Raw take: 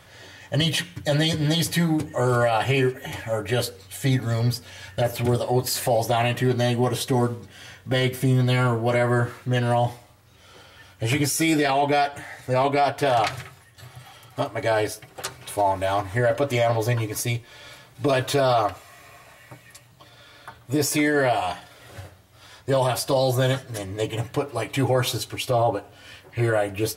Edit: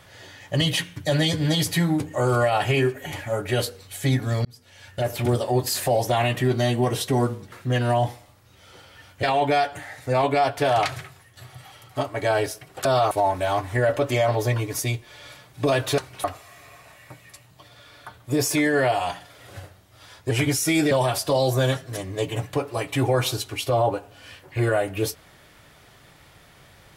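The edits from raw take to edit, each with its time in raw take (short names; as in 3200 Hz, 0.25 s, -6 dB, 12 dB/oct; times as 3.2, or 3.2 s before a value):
4.45–5.2 fade in
7.52–9.33 cut
11.04–11.64 move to 22.72
15.26–15.52 swap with 18.39–18.65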